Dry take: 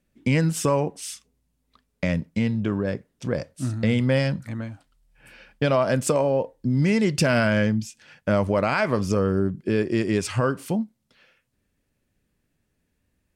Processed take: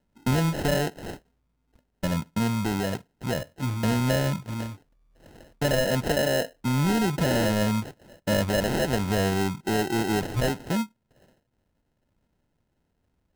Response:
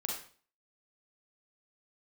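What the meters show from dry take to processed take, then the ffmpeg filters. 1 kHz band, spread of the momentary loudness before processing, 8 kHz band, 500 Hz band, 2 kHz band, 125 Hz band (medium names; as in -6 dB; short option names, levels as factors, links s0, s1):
-1.0 dB, 11 LU, -0.5 dB, -3.5 dB, -2.5 dB, -2.0 dB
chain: -af "acrusher=samples=38:mix=1:aa=0.000001,aeval=exprs='0.282*(cos(1*acos(clip(val(0)/0.282,-1,1)))-cos(1*PI/2))+0.0251*(cos(5*acos(clip(val(0)/0.282,-1,1)))-cos(5*PI/2))':c=same,volume=0.668"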